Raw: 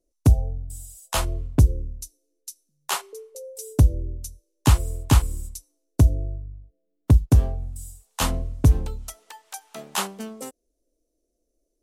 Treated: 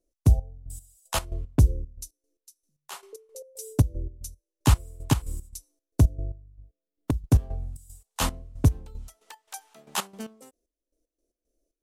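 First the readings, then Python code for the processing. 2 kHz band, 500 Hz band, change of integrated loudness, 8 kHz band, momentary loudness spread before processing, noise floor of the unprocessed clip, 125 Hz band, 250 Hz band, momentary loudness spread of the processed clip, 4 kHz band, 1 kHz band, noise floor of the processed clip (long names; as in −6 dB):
−4.0 dB, −4.0 dB, −4.0 dB, −4.0 dB, 19 LU, −76 dBFS, −4.0 dB, −3.0 dB, 20 LU, −4.0 dB, −4.0 dB, below −85 dBFS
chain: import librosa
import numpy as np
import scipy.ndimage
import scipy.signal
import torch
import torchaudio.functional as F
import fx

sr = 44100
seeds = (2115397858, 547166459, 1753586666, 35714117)

y = fx.step_gate(x, sr, bpm=114, pattern='x.x..x..x.x.xx.', floor_db=-12.0, edge_ms=4.5)
y = y * 10.0 ** (-2.5 / 20.0)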